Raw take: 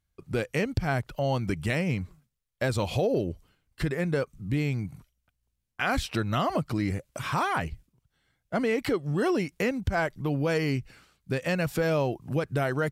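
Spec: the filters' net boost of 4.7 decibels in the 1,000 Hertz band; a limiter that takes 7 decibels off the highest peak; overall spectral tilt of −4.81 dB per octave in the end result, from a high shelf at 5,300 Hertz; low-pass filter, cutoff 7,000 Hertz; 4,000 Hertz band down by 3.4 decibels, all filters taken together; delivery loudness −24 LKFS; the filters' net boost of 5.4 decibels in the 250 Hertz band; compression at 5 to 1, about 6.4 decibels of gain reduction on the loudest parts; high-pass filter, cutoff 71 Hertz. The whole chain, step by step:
high-pass filter 71 Hz
low-pass filter 7,000 Hz
parametric band 250 Hz +7 dB
parametric band 1,000 Hz +6 dB
parametric band 4,000 Hz −8.5 dB
high-shelf EQ 5,300 Hz +8.5 dB
downward compressor 5 to 1, threshold −25 dBFS
level +7.5 dB
brickwall limiter −13 dBFS

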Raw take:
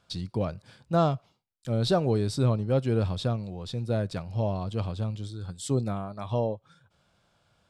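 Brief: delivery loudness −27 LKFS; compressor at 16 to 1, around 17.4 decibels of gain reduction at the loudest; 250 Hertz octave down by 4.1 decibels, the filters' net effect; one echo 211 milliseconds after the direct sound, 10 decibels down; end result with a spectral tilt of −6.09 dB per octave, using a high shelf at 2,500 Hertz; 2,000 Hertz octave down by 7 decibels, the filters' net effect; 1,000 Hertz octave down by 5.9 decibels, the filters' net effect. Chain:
parametric band 250 Hz −5.5 dB
parametric band 1,000 Hz −7 dB
parametric band 2,000 Hz −5 dB
high-shelf EQ 2,500 Hz −4 dB
downward compressor 16 to 1, threshold −39 dBFS
single-tap delay 211 ms −10 dB
level +17 dB

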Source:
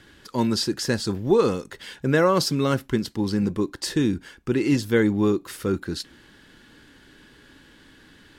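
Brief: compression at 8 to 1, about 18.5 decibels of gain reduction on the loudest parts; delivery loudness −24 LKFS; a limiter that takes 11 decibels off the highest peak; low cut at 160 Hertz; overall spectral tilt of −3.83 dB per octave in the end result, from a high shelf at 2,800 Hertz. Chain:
high-pass filter 160 Hz
high-shelf EQ 2,800 Hz +4.5 dB
downward compressor 8 to 1, threshold −34 dBFS
level +18.5 dB
brickwall limiter −13.5 dBFS

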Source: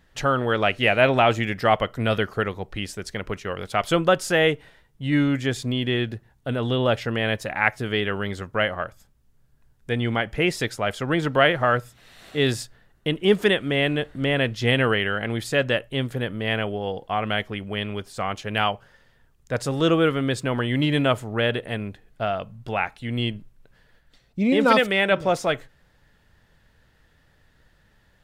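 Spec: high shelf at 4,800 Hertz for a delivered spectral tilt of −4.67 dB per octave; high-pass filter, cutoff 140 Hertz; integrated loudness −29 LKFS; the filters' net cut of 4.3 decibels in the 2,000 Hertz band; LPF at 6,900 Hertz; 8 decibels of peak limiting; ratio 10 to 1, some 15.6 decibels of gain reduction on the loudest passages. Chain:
high-pass filter 140 Hz
low-pass filter 6,900 Hz
parametric band 2,000 Hz −4 dB
high-shelf EQ 4,800 Hz −8.5 dB
downward compressor 10 to 1, threshold −30 dBFS
level +8 dB
brickwall limiter −17 dBFS

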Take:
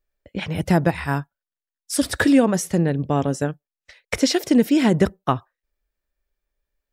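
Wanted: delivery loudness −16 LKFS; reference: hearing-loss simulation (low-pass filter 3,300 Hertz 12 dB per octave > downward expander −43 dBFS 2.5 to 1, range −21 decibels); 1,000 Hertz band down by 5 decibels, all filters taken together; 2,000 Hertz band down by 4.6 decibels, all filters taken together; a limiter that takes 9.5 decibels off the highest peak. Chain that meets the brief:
parametric band 1,000 Hz −6.5 dB
parametric band 2,000 Hz −3 dB
brickwall limiter −15.5 dBFS
low-pass filter 3,300 Hz 12 dB per octave
downward expander −43 dBFS 2.5 to 1, range −21 dB
level +10.5 dB

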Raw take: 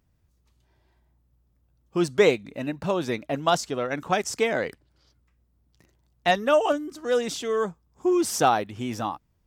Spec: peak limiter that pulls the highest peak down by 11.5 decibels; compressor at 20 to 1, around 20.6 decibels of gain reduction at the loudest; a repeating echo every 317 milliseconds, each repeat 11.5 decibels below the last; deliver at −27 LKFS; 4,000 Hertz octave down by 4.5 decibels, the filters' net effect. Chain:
parametric band 4,000 Hz −6 dB
downward compressor 20 to 1, threshold −34 dBFS
brickwall limiter −32 dBFS
repeating echo 317 ms, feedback 27%, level −11.5 dB
level +15 dB

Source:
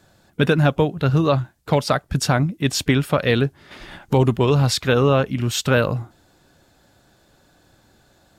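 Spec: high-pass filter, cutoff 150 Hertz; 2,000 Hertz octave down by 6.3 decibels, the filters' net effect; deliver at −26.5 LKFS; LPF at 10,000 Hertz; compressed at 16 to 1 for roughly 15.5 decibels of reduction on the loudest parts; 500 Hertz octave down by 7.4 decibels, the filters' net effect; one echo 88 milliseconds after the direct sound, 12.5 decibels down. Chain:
high-pass filter 150 Hz
low-pass filter 10,000 Hz
parametric band 500 Hz −8.5 dB
parametric band 2,000 Hz −8.5 dB
downward compressor 16 to 1, threshold −32 dBFS
single-tap delay 88 ms −12.5 dB
level +11 dB

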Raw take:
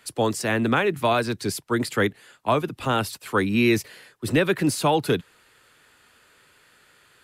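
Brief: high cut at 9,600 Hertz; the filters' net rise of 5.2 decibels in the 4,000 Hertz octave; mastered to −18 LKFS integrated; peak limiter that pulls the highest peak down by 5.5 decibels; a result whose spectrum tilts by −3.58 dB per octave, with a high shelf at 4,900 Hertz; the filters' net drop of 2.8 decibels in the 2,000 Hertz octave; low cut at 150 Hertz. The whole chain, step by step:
high-pass filter 150 Hz
low-pass filter 9,600 Hz
parametric band 2,000 Hz −6.5 dB
parametric band 4,000 Hz +5 dB
high-shelf EQ 4,900 Hz +7.5 dB
level +7.5 dB
brickwall limiter −6.5 dBFS

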